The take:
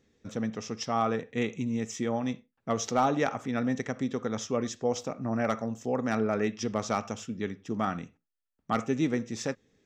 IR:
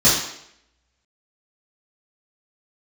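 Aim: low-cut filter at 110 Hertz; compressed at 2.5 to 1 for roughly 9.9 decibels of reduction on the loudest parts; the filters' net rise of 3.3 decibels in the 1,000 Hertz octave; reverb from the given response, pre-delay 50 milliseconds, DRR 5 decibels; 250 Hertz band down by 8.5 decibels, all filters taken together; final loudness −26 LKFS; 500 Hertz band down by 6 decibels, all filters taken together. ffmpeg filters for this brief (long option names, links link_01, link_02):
-filter_complex "[0:a]highpass=110,equalizer=frequency=250:width_type=o:gain=-8,equalizer=frequency=500:width_type=o:gain=-8,equalizer=frequency=1000:width_type=o:gain=8,acompressor=threshold=-34dB:ratio=2.5,asplit=2[link_01][link_02];[1:a]atrim=start_sample=2205,adelay=50[link_03];[link_02][link_03]afir=irnorm=-1:irlink=0,volume=-25.5dB[link_04];[link_01][link_04]amix=inputs=2:normalize=0,volume=10dB"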